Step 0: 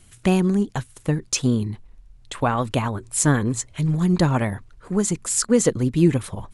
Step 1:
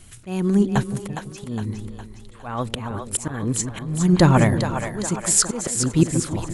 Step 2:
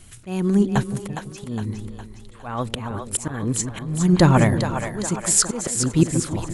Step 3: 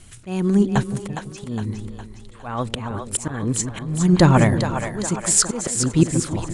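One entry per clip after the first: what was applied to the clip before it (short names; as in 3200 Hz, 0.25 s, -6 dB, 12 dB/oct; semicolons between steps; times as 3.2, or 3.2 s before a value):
auto swell 0.418 s; split-band echo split 470 Hz, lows 0.165 s, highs 0.411 s, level -7 dB; gain +5 dB
nothing audible
downsampling 22050 Hz; gain +1 dB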